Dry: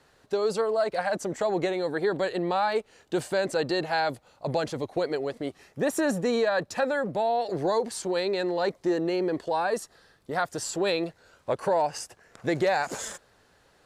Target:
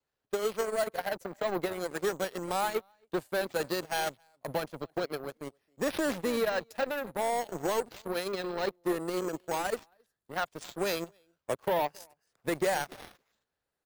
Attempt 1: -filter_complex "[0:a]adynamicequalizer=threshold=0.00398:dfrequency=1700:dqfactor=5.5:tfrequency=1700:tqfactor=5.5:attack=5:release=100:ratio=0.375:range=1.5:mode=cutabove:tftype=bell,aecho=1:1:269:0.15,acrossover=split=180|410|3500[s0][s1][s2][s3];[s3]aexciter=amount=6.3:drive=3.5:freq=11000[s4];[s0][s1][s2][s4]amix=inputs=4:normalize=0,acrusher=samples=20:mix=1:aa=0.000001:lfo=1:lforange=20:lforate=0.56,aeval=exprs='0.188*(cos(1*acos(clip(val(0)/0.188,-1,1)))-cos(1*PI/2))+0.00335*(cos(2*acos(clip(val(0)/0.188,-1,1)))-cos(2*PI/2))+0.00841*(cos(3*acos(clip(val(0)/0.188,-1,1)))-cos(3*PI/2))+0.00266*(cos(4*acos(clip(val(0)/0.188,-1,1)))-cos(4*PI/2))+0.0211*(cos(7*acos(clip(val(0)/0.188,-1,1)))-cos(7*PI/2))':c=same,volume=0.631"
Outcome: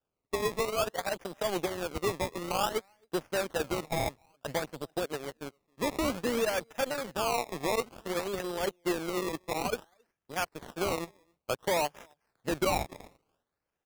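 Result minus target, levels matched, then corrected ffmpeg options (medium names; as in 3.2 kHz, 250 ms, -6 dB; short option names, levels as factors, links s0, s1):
decimation with a swept rate: distortion +14 dB
-filter_complex "[0:a]adynamicequalizer=threshold=0.00398:dfrequency=1700:dqfactor=5.5:tfrequency=1700:tqfactor=5.5:attack=5:release=100:ratio=0.375:range=1.5:mode=cutabove:tftype=bell,aecho=1:1:269:0.15,acrossover=split=180|410|3500[s0][s1][s2][s3];[s3]aexciter=amount=6.3:drive=3.5:freq=11000[s4];[s0][s1][s2][s4]amix=inputs=4:normalize=0,acrusher=samples=4:mix=1:aa=0.000001:lfo=1:lforange=4:lforate=0.56,aeval=exprs='0.188*(cos(1*acos(clip(val(0)/0.188,-1,1)))-cos(1*PI/2))+0.00335*(cos(2*acos(clip(val(0)/0.188,-1,1)))-cos(2*PI/2))+0.00841*(cos(3*acos(clip(val(0)/0.188,-1,1)))-cos(3*PI/2))+0.00266*(cos(4*acos(clip(val(0)/0.188,-1,1)))-cos(4*PI/2))+0.0211*(cos(7*acos(clip(val(0)/0.188,-1,1)))-cos(7*PI/2))':c=same,volume=0.631"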